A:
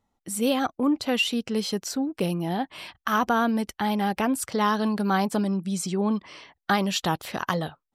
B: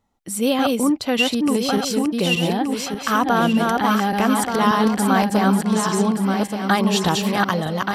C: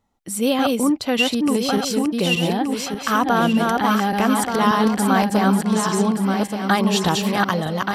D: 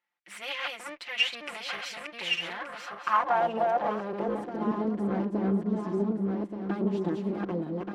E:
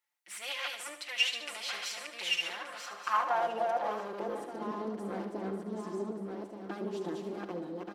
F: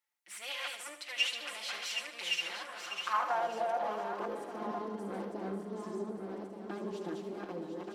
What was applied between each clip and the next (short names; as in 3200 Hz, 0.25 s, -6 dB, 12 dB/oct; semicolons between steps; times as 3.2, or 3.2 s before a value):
regenerating reverse delay 0.589 s, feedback 57%, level -2 dB; gain +4 dB
nothing audible
minimum comb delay 5.7 ms; band-pass sweep 2200 Hz -> 310 Hz, 2.29–4.59
tone controls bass -10 dB, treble +11 dB; feedback echo 74 ms, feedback 50%, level -9.5 dB; gain -5 dB
reverse delay 0.532 s, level -7 dB; gain -2.5 dB